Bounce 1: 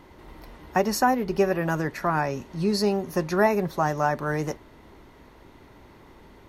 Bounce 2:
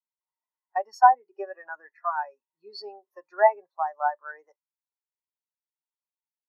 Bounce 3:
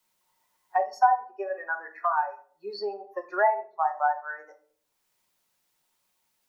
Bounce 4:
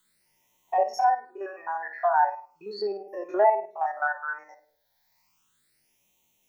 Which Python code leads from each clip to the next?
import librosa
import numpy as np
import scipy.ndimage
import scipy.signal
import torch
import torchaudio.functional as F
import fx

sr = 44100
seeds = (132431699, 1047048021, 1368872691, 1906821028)

y1 = scipy.signal.sosfilt(scipy.signal.butter(2, 820.0, 'highpass', fs=sr, output='sos'), x)
y1 = fx.spectral_expand(y1, sr, expansion=2.5)
y1 = F.gain(torch.from_numpy(y1), 8.0).numpy()
y2 = fx.room_shoebox(y1, sr, seeds[0], volume_m3=320.0, walls='furnished', distance_m=0.97)
y2 = fx.band_squash(y2, sr, depth_pct=70)
y3 = fx.spec_steps(y2, sr, hold_ms=50)
y3 = fx.phaser_stages(y3, sr, stages=8, low_hz=350.0, high_hz=1500.0, hz=0.36, feedback_pct=30)
y3 = F.gain(torch.from_numpy(y3), 8.5).numpy()